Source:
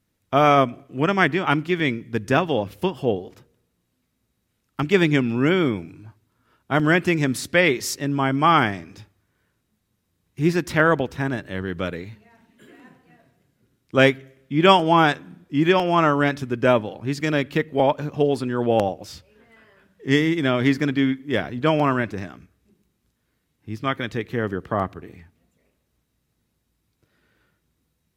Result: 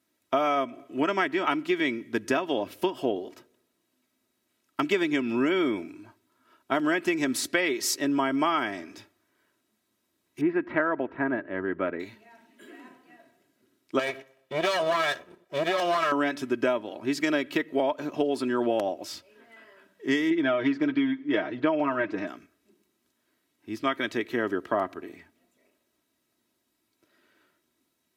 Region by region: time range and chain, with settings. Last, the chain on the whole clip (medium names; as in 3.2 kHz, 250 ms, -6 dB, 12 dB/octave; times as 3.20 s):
10.41–12.00 s: low-pass 2.1 kHz 24 dB/octave + tape noise reduction on one side only decoder only
13.99–16.12 s: comb filter that takes the minimum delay 1.7 ms + gate -45 dBFS, range -6 dB + compression, threshold -19 dBFS
20.30–22.27 s: low-pass 4.7 kHz + treble shelf 3.6 kHz -9 dB + comb 6.4 ms, depth 73%
whole clip: high-pass 250 Hz 12 dB/octave; comb 3.1 ms, depth 53%; compression 12:1, threshold -21 dBFS